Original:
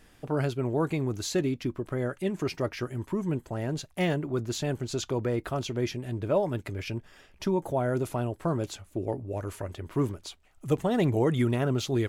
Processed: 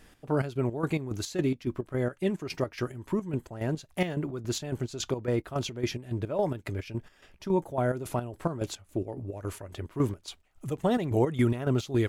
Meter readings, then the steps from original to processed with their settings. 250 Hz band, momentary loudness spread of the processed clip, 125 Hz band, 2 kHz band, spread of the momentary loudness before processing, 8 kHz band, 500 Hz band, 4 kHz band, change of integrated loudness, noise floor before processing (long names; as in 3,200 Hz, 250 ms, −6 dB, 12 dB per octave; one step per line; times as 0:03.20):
−0.5 dB, 10 LU, −1.0 dB, −1.5 dB, 9 LU, −1.0 dB, −1.5 dB, −1.5 dB, −1.0 dB, −59 dBFS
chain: square-wave tremolo 3.6 Hz, depth 65%, duty 50%
level +1.5 dB